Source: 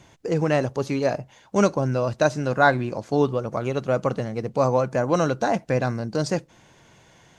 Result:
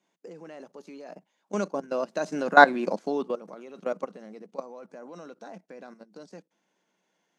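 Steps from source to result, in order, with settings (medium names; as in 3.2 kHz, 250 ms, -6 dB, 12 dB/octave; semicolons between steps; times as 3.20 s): Doppler pass-by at 2.72 s, 7 m/s, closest 2.3 m; level held to a coarse grid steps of 16 dB; elliptic high-pass 180 Hz, stop band 40 dB; trim +6 dB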